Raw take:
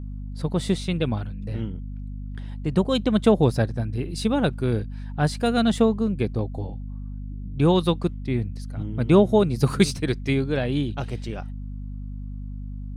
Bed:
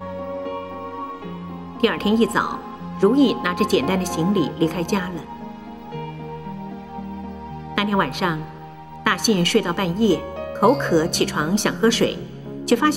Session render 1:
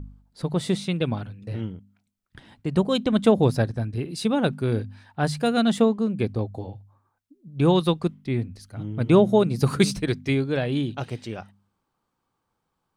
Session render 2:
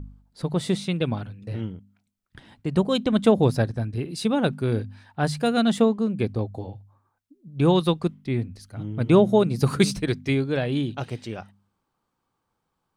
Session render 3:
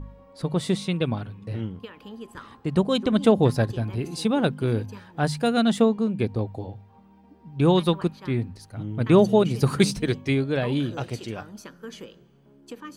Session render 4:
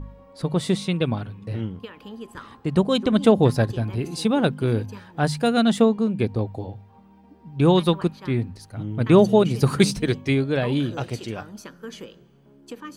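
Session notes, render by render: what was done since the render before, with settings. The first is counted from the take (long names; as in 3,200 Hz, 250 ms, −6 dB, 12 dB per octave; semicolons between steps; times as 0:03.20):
hum removal 50 Hz, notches 5
no processing that can be heard
mix in bed −22.5 dB
level +2 dB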